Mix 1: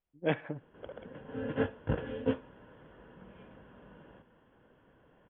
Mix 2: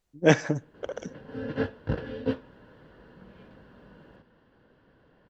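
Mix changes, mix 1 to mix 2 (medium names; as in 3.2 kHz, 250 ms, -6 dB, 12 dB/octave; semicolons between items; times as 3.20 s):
speech +9.5 dB; master: remove rippled Chebyshev low-pass 3.4 kHz, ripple 3 dB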